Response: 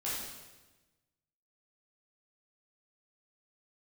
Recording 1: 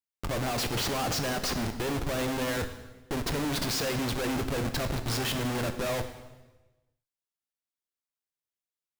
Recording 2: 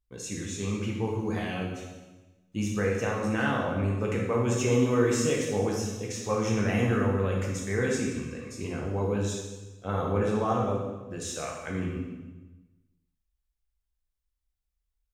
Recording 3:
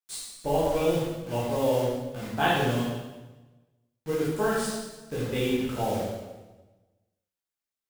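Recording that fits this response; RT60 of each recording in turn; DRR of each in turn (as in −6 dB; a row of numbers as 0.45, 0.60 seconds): 3; 1.2, 1.2, 1.2 seconds; 7.5, −2.5, −8.5 decibels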